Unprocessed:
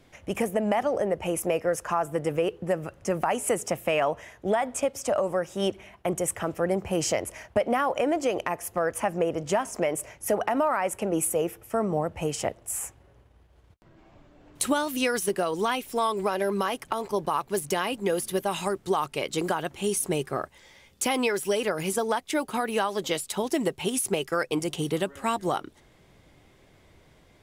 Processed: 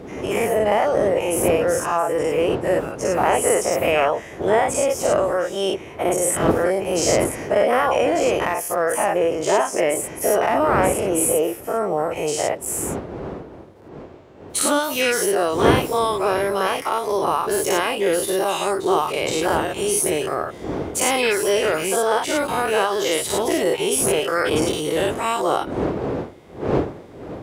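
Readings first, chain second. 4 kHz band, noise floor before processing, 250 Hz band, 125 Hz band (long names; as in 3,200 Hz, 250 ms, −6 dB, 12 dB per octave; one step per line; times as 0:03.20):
+8.0 dB, −58 dBFS, +5.5 dB, +6.0 dB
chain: every bin's largest magnitude spread in time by 120 ms
wind on the microphone 300 Hz −27 dBFS
high-pass filter 67 Hz
low shelf with overshoot 290 Hz −6 dB, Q 1.5
level +1 dB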